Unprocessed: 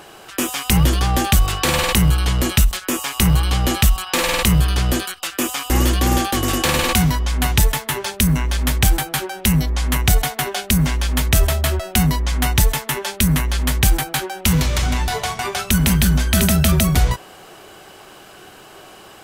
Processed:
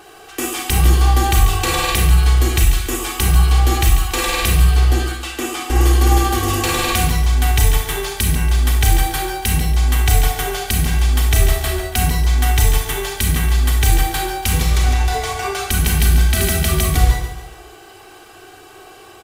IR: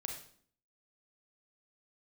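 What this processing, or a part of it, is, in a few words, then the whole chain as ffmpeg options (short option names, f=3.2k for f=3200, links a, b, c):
microphone above a desk: -filter_complex "[0:a]asettb=1/sr,asplit=3[a][b][c];[a]atrim=end=4.674[d];[b]atrim=start=4.67:end=5.81,asetpts=PTS-STARTPTS,afade=t=in:d=0.004:c=qsin,afade=t=out:st=1.136:d=0.004:c=qsin,highshelf=f=9.2k:g=-9.5[e];[c]atrim=start=5.806[f];[d][e]acrossfade=d=0.004:c1=hsin:c2=qsin[g];[g][f]acrossfade=d=0.004:c1=qsin:c2=hsin,aecho=1:1:2.6:0.66[h];[1:a]atrim=start_sample=2205[i];[h][i]afir=irnorm=-1:irlink=0,aecho=1:1:142|284|426|568:0.266|0.114|0.0492|0.0212,volume=-1dB"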